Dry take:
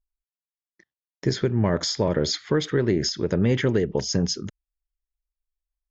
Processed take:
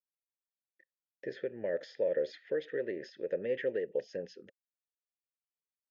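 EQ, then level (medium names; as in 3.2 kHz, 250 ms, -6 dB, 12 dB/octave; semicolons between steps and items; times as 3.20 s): vowel filter e; high-pass 160 Hz 6 dB/octave; distance through air 110 m; 0.0 dB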